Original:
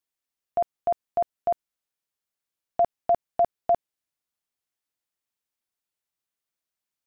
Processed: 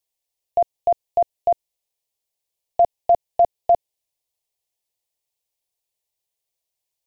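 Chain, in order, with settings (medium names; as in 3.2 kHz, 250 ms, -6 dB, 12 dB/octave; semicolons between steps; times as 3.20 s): static phaser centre 580 Hz, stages 4; trim +6.5 dB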